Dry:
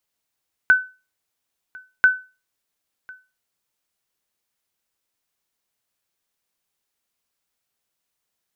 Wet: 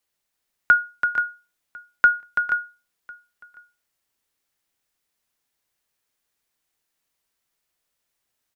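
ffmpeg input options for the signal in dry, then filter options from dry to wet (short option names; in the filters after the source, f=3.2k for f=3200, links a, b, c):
-f lavfi -i "aevalsrc='0.501*(sin(2*PI*1510*mod(t,1.34))*exp(-6.91*mod(t,1.34)/0.3)+0.0501*sin(2*PI*1510*max(mod(t,1.34)-1.05,0))*exp(-6.91*max(mod(t,1.34)-1.05,0)/0.3))':d=2.68:s=44100"
-af "equalizer=f=1.9k:w=4:g=2.5,afreqshift=-71,aecho=1:1:333|452|479:0.447|0.188|0.355"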